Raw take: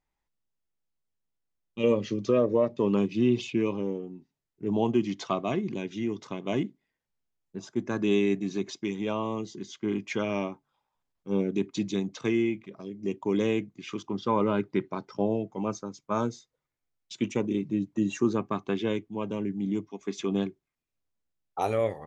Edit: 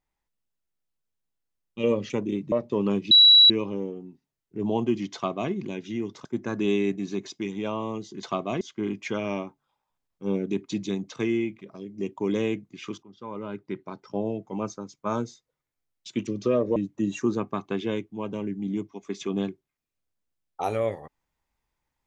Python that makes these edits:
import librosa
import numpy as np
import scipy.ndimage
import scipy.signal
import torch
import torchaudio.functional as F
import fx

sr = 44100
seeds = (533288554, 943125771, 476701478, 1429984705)

y = fx.edit(x, sr, fx.swap(start_s=2.1, length_s=0.49, other_s=17.32, other_length_s=0.42),
    fx.bleep(start_s=3.18, length_s=0.39, hz=3910.0, db=-10.5),
    fx.duplicate(start_s=5.21, length_s=0.38, to_s=9.66),
    fx.cut(start_s=6.32, length_s=1.36),
    fx.fade_in_from(start_s=14.08, length_s=1.51, floor_db=-21.0), tone=tone)